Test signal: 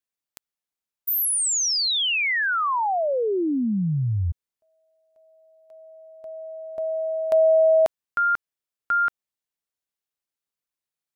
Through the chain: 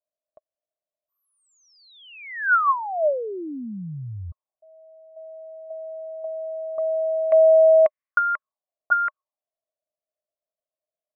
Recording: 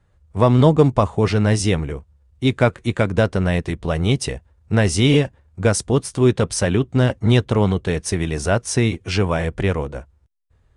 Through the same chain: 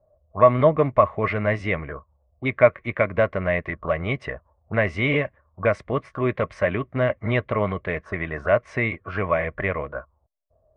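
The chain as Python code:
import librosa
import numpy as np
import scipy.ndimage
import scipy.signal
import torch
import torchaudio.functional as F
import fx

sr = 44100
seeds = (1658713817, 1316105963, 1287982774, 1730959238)

y = fx.small_body(x, sr, hz=(610.0, 1100.0), ring_ms=35, db=15)
y = fx.envelope_lowpass(y, sr, base_hz=650.0, top_hz=2100.0, q=6.4, full_db=-15.5, direction='up')
y = y * librosa.db_to_amplitude(-10.0)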